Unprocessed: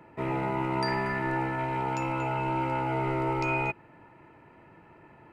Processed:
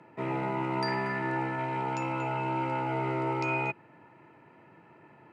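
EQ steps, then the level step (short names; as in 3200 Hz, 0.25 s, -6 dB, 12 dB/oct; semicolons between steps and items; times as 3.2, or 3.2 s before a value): HPF 110 Hz 24 dB/oct; air absorption 72 m; high shelf 6300 Hz +9 dB; -1.5 dB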